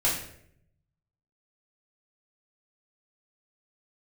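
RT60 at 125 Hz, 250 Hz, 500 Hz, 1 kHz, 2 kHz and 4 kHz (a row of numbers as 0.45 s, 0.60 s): 1.3 s, 0.90 s, 0.80 s, 0.55 s, 0.60 s, 0.50 s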